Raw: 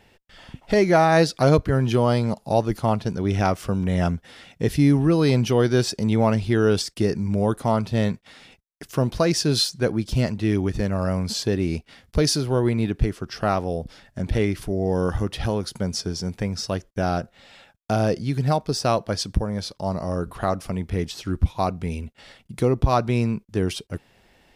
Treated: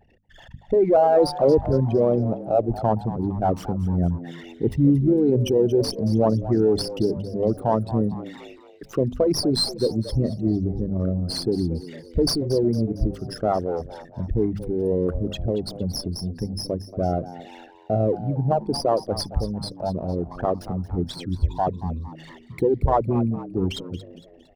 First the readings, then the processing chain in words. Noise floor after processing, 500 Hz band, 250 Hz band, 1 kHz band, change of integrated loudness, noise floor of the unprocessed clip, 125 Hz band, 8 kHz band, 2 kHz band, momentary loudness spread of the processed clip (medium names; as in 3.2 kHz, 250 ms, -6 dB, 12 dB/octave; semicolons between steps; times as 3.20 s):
-49 dBFS, +1.5 dB, -0.5 dB, -1.0 dB, -0.5 dB, -61 dBFS, -2.0 dB, -5.5 dB, -14.0 dB, 11 LU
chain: resonances exaggerated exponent 3; hum notches 50/100/150/200/250 Hz; frequency-shifting echo 229 ms, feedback 44%, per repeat +79 Hz, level -15 dB; sliding maximum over 3 samples